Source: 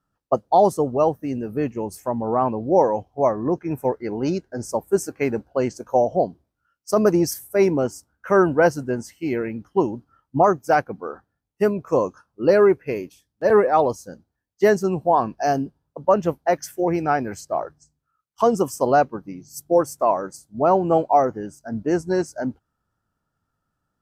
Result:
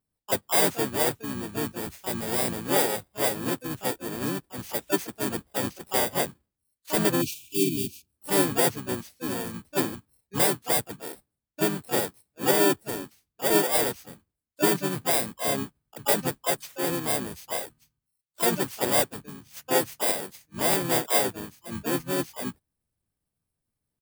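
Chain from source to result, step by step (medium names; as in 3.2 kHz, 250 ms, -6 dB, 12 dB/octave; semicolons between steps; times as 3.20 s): bit-reversed sample order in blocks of 32 samples; harmony voices -5 st -6 dB, -4 st -6 dB, +7 st -7 dB; spectral replace 7.24–8.13 s, 410–2300 Hz after; trim -8.5 dB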